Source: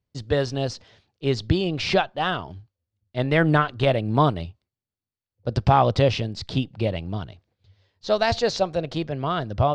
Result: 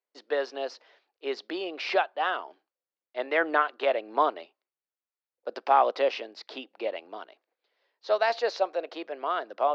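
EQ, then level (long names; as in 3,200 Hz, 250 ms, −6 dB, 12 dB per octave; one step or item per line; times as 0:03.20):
Bessel high-pass filter 580 Hz, order 8
high-frequency loss of the air 200 metres
parametric band 3,400 Hz −4.5 dB 0.55 octaves
0.0 dB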